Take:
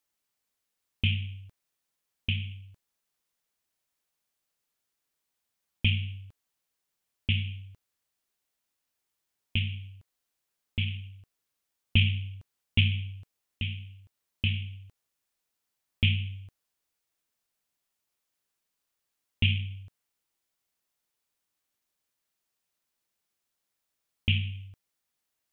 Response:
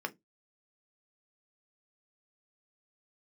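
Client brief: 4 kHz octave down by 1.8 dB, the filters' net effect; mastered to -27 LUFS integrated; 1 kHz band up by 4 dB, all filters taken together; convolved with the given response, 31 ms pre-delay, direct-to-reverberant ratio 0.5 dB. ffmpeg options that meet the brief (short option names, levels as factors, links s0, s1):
-filter_complex "[0:a]equalizer=f=1000:t=o:g=5.5,equalizer=f=4000:t=o:g=-3.5,asplit=2[s0][s1];[1:a]atrim=start_sample=2205,adelay=31[s2];[s1][s2]afir=irnorm=-1:irlink=0,volume=0.631[s3];[s0][s3]amix=inputs=2:normalize=0,volume=1.41"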